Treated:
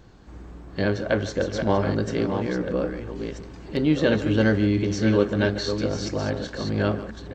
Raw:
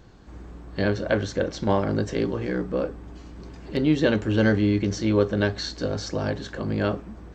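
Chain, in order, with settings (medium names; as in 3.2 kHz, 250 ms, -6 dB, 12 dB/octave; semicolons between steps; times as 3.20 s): chunks repeated in reverse 682 ms, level -7 dB; speakerphone echo 150 ms, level -14 dB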